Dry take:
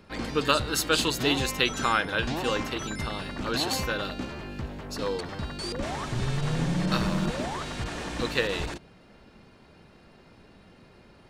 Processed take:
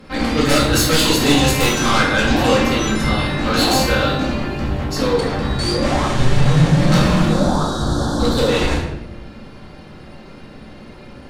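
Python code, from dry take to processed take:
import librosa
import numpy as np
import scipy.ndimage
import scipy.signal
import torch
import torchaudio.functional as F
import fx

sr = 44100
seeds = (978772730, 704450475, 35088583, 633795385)

y = fx.cheby1_bandstop(x, sr, low_hz=1500.0, high_hz=3600.0, order=3, at=(7.29, 8.48))
y = fx.fold_sine(y, sr, drive_db=13, ceiling_db=-7.5)
y = fx.room_shoebox(y, sr, seeds[0], volume_m3=320.0, walls='mixed', distance_m=2.1)
y = y * librosa.db_to_amplitude(-9.5)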